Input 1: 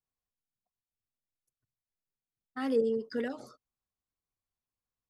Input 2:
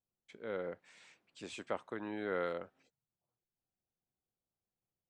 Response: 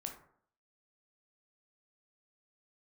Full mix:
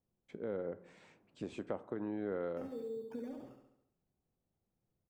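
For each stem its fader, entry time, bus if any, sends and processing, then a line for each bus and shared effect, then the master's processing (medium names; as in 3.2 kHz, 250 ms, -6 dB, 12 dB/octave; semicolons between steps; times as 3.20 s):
-13.0 dB, 0.00 s, send -7.5 dB, echo send -4 dB, compression, threshold -36 dBFS, peak gain reduction 13 dB; sample-and-hold 11×
-0.5 dB, 0.00 s, send -5.5 dB, no echo send, none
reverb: on, RT60 0.60 s, pre-delay 12 ms
echo: feedback delay 69 ms, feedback 55%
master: tilt shelf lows +10 dB, about 1.1 kHz; compression 2.5:1, threshold -39 dBFS, peak gain reduction 10.5 dB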